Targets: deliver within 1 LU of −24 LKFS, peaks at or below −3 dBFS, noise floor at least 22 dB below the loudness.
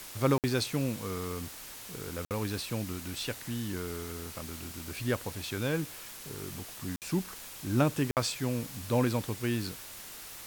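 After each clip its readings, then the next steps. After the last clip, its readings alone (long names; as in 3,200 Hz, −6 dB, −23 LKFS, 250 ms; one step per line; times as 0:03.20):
number of dropouts 4; longest dropout 58 ms; background noise floor −46 dBFS; target noise floor −56 dBFS; integrated loudness −33.5 LKFS; sample peak −13.0 dBFS; target loudness −24.0 LKFS
→ repair the gap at 0:00.38/0:02.25/0:06.96/0:08.11, 58 ms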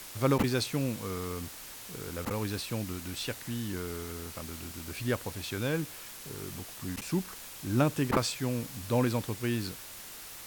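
number of dropouts 0; background noise floor −46 dBFS; target noise floor −56 dBFS
→ broadband denoise 10 dB, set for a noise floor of −46 dBFS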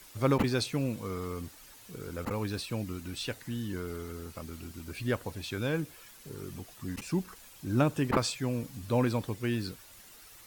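background noise floor −54 dBFS; target noise floor −56 dBFS
→ broadband denoise 6 dB, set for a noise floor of −54 dBFS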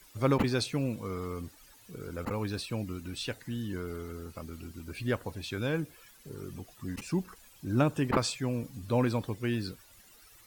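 background noise floor −58 dBFS; integrated loudness −33.5 LKFS; sample peak −13.0 dBFS; target loudness −24.0 LKFS
→ level +9.5 dB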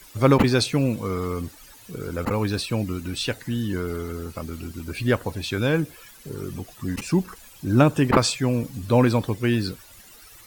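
integrated loudness −24.0 LKFS; sample peak −3.5 dBFS; background noise floor −48 dBFS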